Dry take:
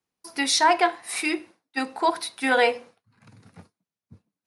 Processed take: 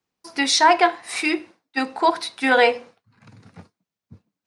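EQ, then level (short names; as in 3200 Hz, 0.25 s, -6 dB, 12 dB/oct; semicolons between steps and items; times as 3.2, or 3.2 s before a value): bell 11000 Hz -14 dB 0.42 oct; +4.0 dB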